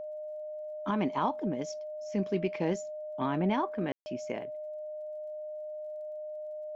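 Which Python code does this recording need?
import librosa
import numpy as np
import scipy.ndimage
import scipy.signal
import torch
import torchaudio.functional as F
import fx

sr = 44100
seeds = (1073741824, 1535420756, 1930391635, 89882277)

y = fx.fix_declick_ar(x, sr, threshold=6.5)
y = fx.notch(y, sr, hz=610.0, q=30.0)
y = fx.fix_ambience(y, sr, seeds[0], print_start_s=0.36, print_end_s=0.86, start_s=3.92, end_s=4.06)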